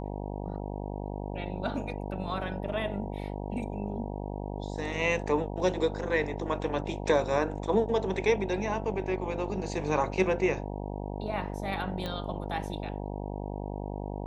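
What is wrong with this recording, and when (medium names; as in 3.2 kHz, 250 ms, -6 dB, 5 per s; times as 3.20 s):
buzz 50 Hz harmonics 19 -36 dBFS
12.06 s: pop -21 dBFS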